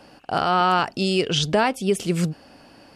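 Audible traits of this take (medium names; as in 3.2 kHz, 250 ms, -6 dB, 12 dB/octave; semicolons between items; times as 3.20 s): noise floor -51 dBFS; spectral tilt -4.5 dB/octave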